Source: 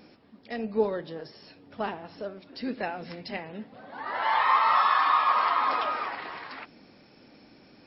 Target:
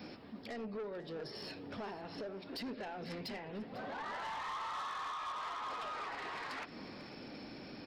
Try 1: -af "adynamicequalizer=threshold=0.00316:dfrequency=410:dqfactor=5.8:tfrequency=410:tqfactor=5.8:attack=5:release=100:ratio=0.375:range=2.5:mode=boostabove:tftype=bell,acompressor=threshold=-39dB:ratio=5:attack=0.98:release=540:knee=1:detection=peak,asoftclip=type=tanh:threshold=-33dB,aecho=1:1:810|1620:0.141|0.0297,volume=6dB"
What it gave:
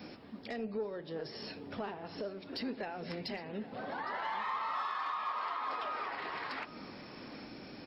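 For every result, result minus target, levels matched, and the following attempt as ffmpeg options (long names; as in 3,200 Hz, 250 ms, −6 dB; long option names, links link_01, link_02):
echo 313 ms late; soft clipping: distortion −14 dB
-af "adynamicequalizer=threshold=0.00316:dfrequency=410:dqfactor=5.8:tfrequency=410:tqfactor=5.8:attack=5:release=100:ratio=0.375:range=2.5:mode=boostabove:tftype=bell,acompressor=threshold=-39dB:ratio=5:attack=0.98:release=540:knee=1:detection=peak,asoftclip=type=tanh:threshold=-33dB,aecho=1:1:497|994:0.141|0.0297,volume=6dB"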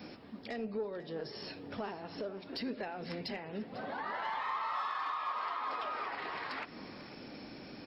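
soft clipping: distortion −14 dB
-af "adynamicequalizer=threshold=0.00316:dfrequency=410:dqfactor=5.8:tfrequency=410:tqfactor=5.8:attack=5:release=100:ratio=0.375:range=2.5:mode=boostabove:tftype=bell,acompressor=threshold=-39dB:ratio=5:attack=0.98:release=540:knee=1:detection=peak,asoftclip=type=tanh:threshold=-44dB,aecho=1:1:497|994:0.141|0.0297,volume=6dB"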